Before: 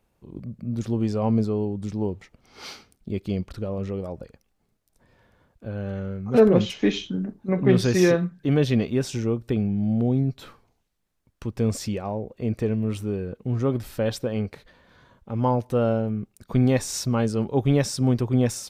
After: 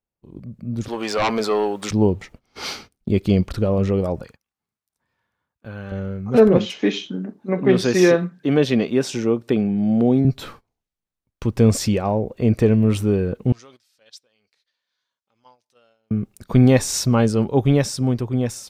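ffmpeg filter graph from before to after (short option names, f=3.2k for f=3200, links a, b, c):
-filter_complex "[0:a]asettb=1/sr,asplit=3[a][b][c];[a]atrim=end=0.884[d];[b]atrim=start=0.88:end=1.91,asetpts=PTS-STARTPTS,afade=t=in:d=0.004:c=qsin,afade=t=out:st=1.026:d=0.004:c=qsin,highpass=1k,equalizer=f=8.7k:w=0.32:g=-6,aeval=exprs='0.075*sin(PI/2*3.55*val(0)/0.075)':c=same[e];[c]atrim=start=1.906[f];[d][e]acrossfade=d=0.004:c1=hsin:c2=qsin[g];[g][f]acrossfade=d=0.004:c1=qsin:c2=hsin,asettb=1/sr,asplit=3[h][i][j];[h]atrim=end=4.214[k];[i]atrim=start=4.21:end=5.92,asetpts=PTS-STARTPTS,afade=t=in:d=0.004:c=qsin,afade=t=out:st=1.706:d=0.004:c=qsin,highpass=69,lowshelf=f=770:t=q:w=1.5:g=-6.5[l];[j]atrim=start=5.916[m];[k][l]acrossfade=d=0.004:c1=hsin:c2=qsin[n];[n][m]acrossfade=d=0.004:c1=qsin:c2=hsin,asettb=1/sr,asplit=3[o][p][q];[o]atrim=end=6.574[r];[p]atrim=start=6.57:end=10.25,asetpts=PTS-STARTPTS,afade=t=in:d=0.004:c=qsin,afade=t=out:st=3.676:d=0.004:c=qsin,highpass=210,highshelf=f=9.8k:g=-7[s];[q]atrim=start=10.246[t];[r][s]acrossfade=d=0.004:c1=hsin:c2=qsin[u];[u][t]acrossfade=d=0.004:c1=qsin:c2=hsin,asettb=1/sr,asplit=3[v][w][x];[v]atrim=end=13.524[y];[w]atrim=start=13.52:end=16.11,asetpts=PTS-STARTPTS,afade=t=in:d=0.004:c=qsin,afade=t=out:st=2.586:d=0.004:c=qsin,bandpass=f=5.2k:t=q:w=1.6,acompressor=threshold=-52dB:ratio=3:attack=3.2:release=140:knee=1:detection=peak[z];[x]atrim=start=16.106[aa];[y][z]acrossfade=d=0.004:c1=hsin:c2=qsin[ab];[ab][aa]acrossfade=d=0.004:c1=qsin:c2=hsin,agate=range=-20dB:threshold=-51dB:ratio=16:detection=peak,dynaudnorm=f=130:g=17:m=11.5dB,volume=-1dB"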